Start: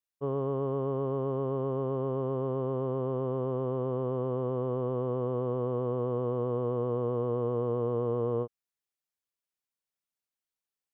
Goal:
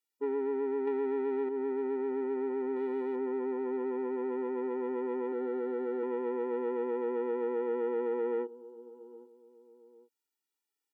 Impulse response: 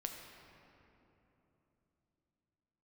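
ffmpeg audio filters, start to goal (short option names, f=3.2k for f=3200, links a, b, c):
-filter_complex "[0:a]asettb=1/sr,asplit=3[a][b][c];[a]atrim=end=2.764[d];[b]atrim=start=2.76:end=3.16,asetpts=PTS-STARTPTS,afade=t=in:d=0.004:c=qsin,afade=t=out:st=0.396:d=0.004:c=qsin,highshelf=f=2.1k:g=10[e];[c]atrim=start=3.156[f];[d][e]acrossfade=d=0.004:c1=hsin:c2=qsin[g];[g][f]acrossfade=d=0.004:c1=qsin:c2=hsin,asplit=2[h][i];[i]adelay=806,lowpass=f=1.6k:p=1,volume=-23.5dB,asplit=2[j][k];[k]adelay=806,lowpass=f=1.6k:p=1,volume=0.38[l];[j][l]amix=inputs=2:normalize=0[m];[h][m]amix=inputs=2:normalize=0,asettb=1/sr,asplit=3[n][o][p];[n]atrim=end=0.874[q];[o]atrim=start=0.87:end=1.49,asetpts=PTS-STARTPTS,afade=t=in:d=0.004:c=qsin,afade=t=out:st=0.616:d=0.004:c=qsin,acontrast=85[r];[p]atrim=start=1.486[s];[q][r]acrossfade=d=0.004:c1=hsin:c2=qsin[t];[t][s]acrossfade=d=0.004:c1=qsin:c2=hsin,asettb=1/sr,asplit=3[u][v][w];[u]atrim=end=5.324[x];[v]atrim=start=5.32:end=6.03,asetpts=PTS-STARTPTS,afade=t=in:d=0.004:c=qsin,afade=t=out:st=0.706:d=0.004:c=qsin,highpass=140[y];[w]atrim=start=6.026[z];[x][y]acrossfade=d=0.004:c1=hsin:c2=qsin[aa];[aa][z]acrossfade=d=0.004:c1=qsin:c2=hsin,acompressor=threshold=-28dB:ratio=6,bandreject=f=710:w=12,asoftclip=type=tanh:threshold=-30.5dB,afftfilt=real='re*eq(mod(floor(b*sr/1024/250),2),1)':imag='im*eq(mod(floor(b*sr/1024/250),2),1)':win_size=1024:overlap=0.75,volume=6dB"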